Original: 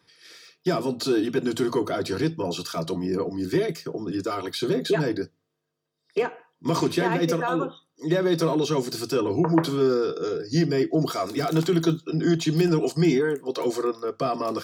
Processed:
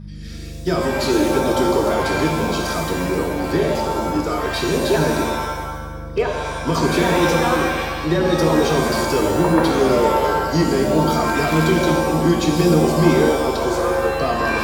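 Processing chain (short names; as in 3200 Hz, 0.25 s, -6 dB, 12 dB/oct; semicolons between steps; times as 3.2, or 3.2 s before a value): buzz 50 Hz, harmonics 4, -38 dBFS -1 dB/oct; shimmer reverb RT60 1.2 s, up +7 st, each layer -2 dB, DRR 2.5 dB; gain +3 dB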